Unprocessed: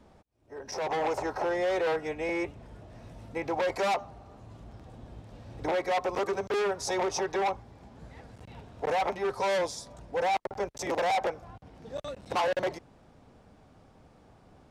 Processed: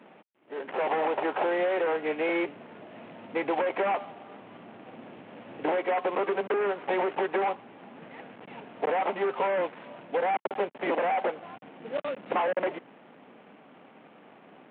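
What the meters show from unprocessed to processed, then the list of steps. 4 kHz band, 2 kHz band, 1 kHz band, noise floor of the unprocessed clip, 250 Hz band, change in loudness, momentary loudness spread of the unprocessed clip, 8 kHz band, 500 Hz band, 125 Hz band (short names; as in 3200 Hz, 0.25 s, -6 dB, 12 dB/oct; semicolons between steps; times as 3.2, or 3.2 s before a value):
-5.0 dB, +2.0 dB, +1.5 dB, -59 dBFS, +3.0 dB, +1.5 dB, 21 LU, under -35 dB, +2.0 dB, -7.0 dB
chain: CVSD 16 kbps; HPF 200 Hz 24 dB/oct; compressor, threshold -30 dBFS, peak gain reduction 6 dB; gain +6.5 dB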